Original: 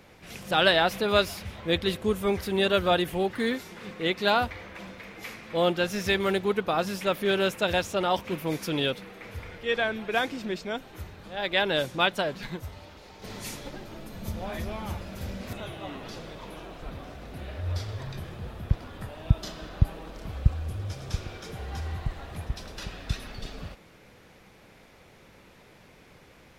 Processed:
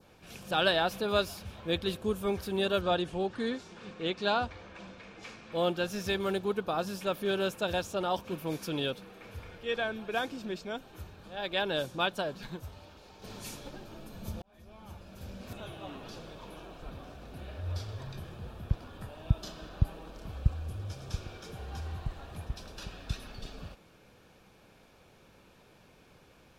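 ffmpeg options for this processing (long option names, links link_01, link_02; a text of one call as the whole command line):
ffmpeg -i in.wav -filter_complex "[0:a]asettb=1/sr,asplit=3[link_01][link_02][link_03];[link_01]atrim=end=2.814[link_04];[link_02]atrim=start=2.81:end=5.52,asetpts=PTS-STARTPTS,afade=type=in:duration=0.004:curve=qsin,afade=type=out:start_time=2.706:duration=0.004:curve=qsin,lowpass=frequency=7900:width=0.5412,lowpass=frequency=7900:width=1.3066[link_05];[link_03]atrim=start=5.516[link_06];[link_04][link_05]acrossfade=duration=0.004:curve1=hsin:curve2=qsin[link_07];[link_07][link_06]acrossfade=duration=0.004:curve1=qsin:curve2=hsin,asplit=2[link_08][link_09];[link_08]atrim=end=14.42,asetpts=PTS-STARTPTS,afade=type=out:start_time=14.416:duration=0.004:curve=hsin[link_10];[link_09]atrim=start=14.42,asetpts=PTS-STARTPTS,afade=type=in:duration=1.29[link_11];[link_10][link_11]concat=n=2:v=0:a=1,adynamicequalizer=threshold=0.00708:dfrequency=2300:dqfactor=1.4:tfrequency=2300:tqfactor=1.4:attack=5:release=100:ratio=0.375:range=2:mode=cutabove:tftype=bell,bandreject=frequency=2000:width=5.6,volume=-5dB" out.wav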